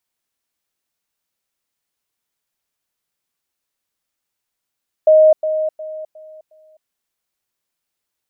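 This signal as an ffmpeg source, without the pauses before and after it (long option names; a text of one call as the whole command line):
ffmpeg -f lavfi -i "aevalsrc='pow(10,(-6-10*floor(t/0.36))/20)*sin(2*PI*624*t)*clip(min(mod(t,0.36),0.26-mod(t,0.36))/0.005,0,1)':duration=1.8:sample_rate=44100" out.wav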